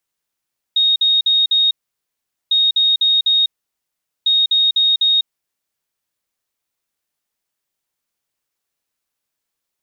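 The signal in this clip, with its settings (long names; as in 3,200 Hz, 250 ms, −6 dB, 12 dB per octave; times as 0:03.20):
beeps in groups sine 3,730 Hz, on 0.20 s, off 0.05 s, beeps 4, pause 0.80 s, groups 3, −11 dBFS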